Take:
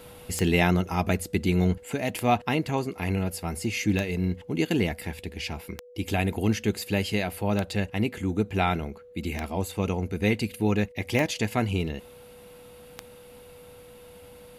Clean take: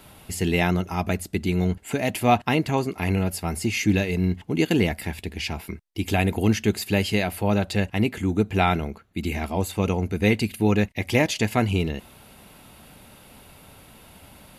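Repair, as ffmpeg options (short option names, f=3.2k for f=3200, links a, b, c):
-af "adeclick=t=4,bandreject=f=490:w=30,asetnsamples=n=441:p=0,asendcmd='1.85 volume volume 4dB',volume=0dB"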